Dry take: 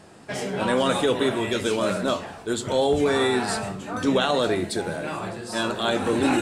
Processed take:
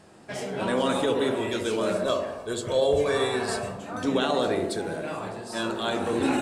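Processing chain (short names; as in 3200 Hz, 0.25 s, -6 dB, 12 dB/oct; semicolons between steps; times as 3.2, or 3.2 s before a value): 1.94–3.78 comb 1.8 ms, depth 51%; on a send: band-limited delay 68 ms, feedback 66%, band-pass 480 Hz, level -4 dB; on the sum: gain -4.5 dB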